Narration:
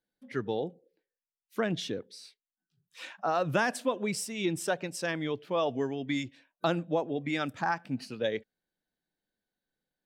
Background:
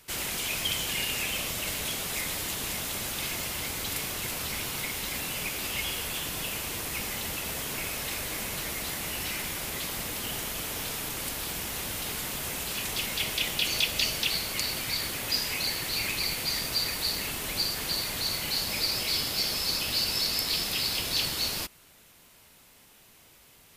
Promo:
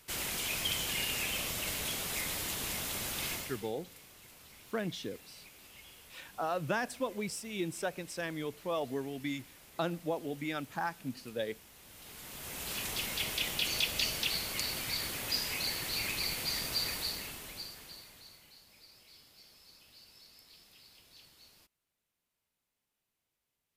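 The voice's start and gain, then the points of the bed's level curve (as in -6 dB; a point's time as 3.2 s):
3.15 s, -5.5 dB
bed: 3.33 s -4 dB
3.74 s -22.5 dB
11.79 s -22.5 dB
12.72 s -5 dB
16.93 s -5 dB
18.63 s -30 dB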